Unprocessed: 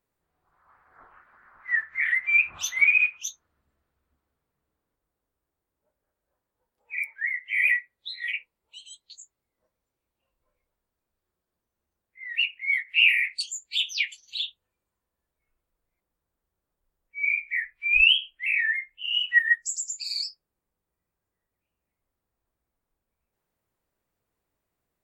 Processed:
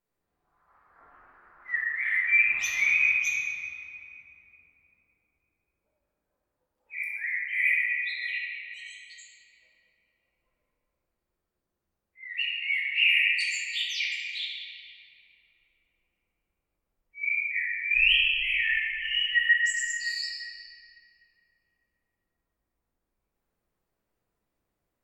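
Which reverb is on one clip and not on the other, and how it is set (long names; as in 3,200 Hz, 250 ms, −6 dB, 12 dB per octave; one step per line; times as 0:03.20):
rectangular room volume 170 cubic metres, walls hard, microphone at 0.77 metres
level −6.5 dB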